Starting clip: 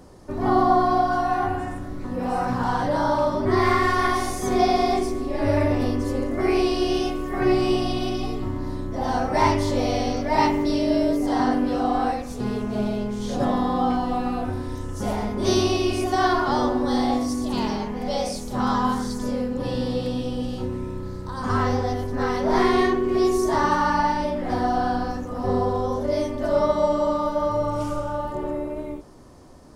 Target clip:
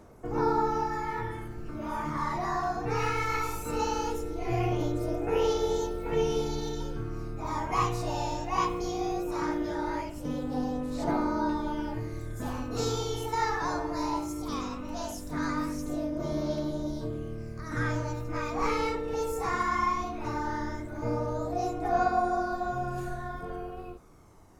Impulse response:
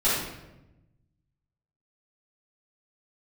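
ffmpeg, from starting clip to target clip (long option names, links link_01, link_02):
-af "aphaser=in_gain=1:out_gain=1:delay=1.4:decay=0.36:speed=0.15:type=triangular,asetrate=53361,aresample=44100,volume=-9dB"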